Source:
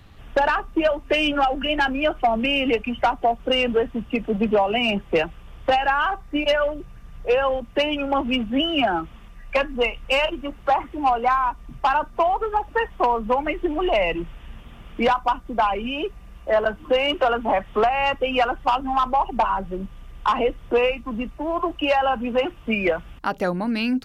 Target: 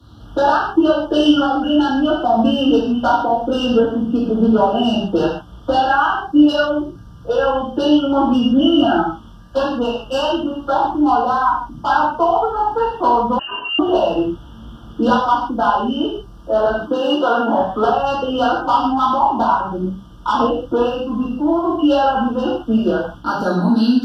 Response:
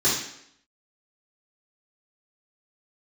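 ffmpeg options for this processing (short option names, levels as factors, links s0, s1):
-filter_complex "[0:a]asettb=1/sr,asplit=3[s0][s1][s2];[s0]atrim=end=1.414[s3];[s1]atrim=start=1.41:end=2.03,asetpts=PTS-STARTPTS,afade=t=in:d=0.004:c=qsin,afade=t=out:st=0.616:d=0.004:c=qsin,acompressor=threshold=0.1:ratio=6[s4];[s2]atrim=start=2.026[s5];[s3][s4]acrossfade=d=0.004:c1=hsin:c2=qsin[s6];[s6][s5]acrossfade=d=0.004:c1=qsin:c2=hsin,asettb=1/sr,asplit=3[s7][s8][s9];[s7]atrim=end=16.814[s10];[s8]atrim=start=16.81:end=17.58,asetpts=PTS-STARTPTS,afade=t=in:d=0.004:c=qsin,afade=t=out:st=0.766:d=0.004:c=qsin,highpass=f=160:w=0.5412,highpass=f=160:w=1.3066[s11];[s9]atrim=start=17.576[s12];[s10][s11]acrossfade=d=0.004:c1=hsin:c2=qsin[s13];[s13][s12]acrossfade=d=0.004:c1=qsin:c2=hsin[s14];[1:a]atrim=start_sample=2205,atrim=end_sample=6615,asetrate=35721,aresample=44100[s15];[s14][s15]afir=irnorm=-1:irlink=0,asettb=1/sr,asplit=3[s16][s17][s18];[s16]atrim=end=13.394[s19];[s17]atrim=start=13.39:end=13.79,asetpts=PTS-STARTPTS,afade=t=in:d=0.004:c=qsin,afade=t=out:st=0.396:d=0.004:c=qsin,lowpass=f=2600:t=q:w=0.5098,lowpass=f=2600:t=q:w=0.6013,lowpass=f=2600:t=q:w=0.9,lowpass=f=2600:t=q:w=2.563,afreqshift=-3100[s20];[s18]atrim=start=13.786[s21];[s19][s20]acrossfade=d=0.004:c1=hsin:c2=qsin[s22];[s22][s21]acrossfade=d=0.004:c1=qsin:c2=hsin,asuperstop=centerf=2200:order=8:qfactor=1.6,volume=0.282"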